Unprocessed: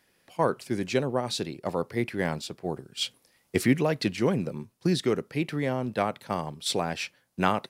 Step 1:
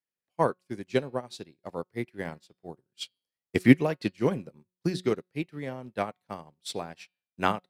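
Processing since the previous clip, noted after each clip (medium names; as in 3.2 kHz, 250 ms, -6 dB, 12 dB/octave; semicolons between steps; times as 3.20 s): de-hum 182.3 Hz, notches 28; upward expansion 2.5:1, over -43 dBFS; trim +7 dB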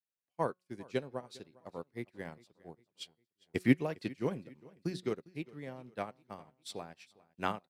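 feedback delay 404 ms, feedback 43%, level -22.5 dB; trim -8.5 dB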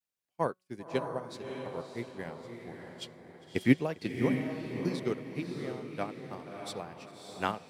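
vibrato 0.32 Hz 21 cents; echo that smears into a reverb 618 ms, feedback 41%, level -5 dB; trim +2.5 dB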